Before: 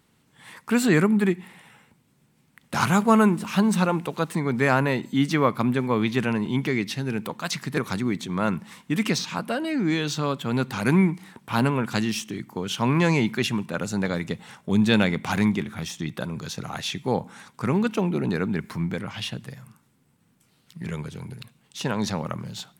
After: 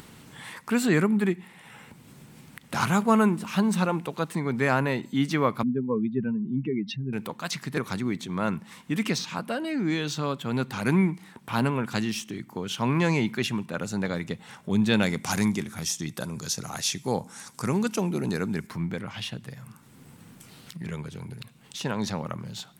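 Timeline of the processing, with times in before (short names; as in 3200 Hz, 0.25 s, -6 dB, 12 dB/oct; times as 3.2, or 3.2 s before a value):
5.63–7.13 spectral contrast raised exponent 2.4
15.03–18.67 band shelf 7900 Hz +12 dB
whole clip: upward compressor, threshold -30 dBFS; gain -3 dB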